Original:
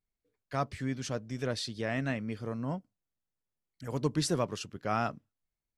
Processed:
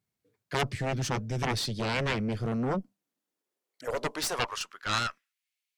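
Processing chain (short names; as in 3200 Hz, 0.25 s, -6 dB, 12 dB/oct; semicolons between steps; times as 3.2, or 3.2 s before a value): high-pass sweep 120 Hz -> 2600 Hz, 2.38–5.53; added harmonics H 3 -15 dB, 7 -9 dB, 8 -19 dB, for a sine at -14.5 dBFS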